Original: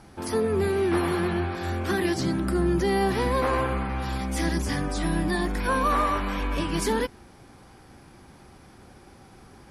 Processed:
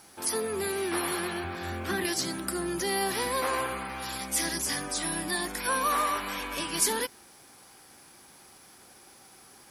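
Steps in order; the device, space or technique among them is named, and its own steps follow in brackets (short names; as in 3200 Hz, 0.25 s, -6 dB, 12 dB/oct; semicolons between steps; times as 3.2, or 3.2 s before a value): 1.44–2.05 tone controls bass +9 dB, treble -10 dB; turntable without a phono preamp (RIAA curve recording; white noise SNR 37 dB); gain -3.5 dB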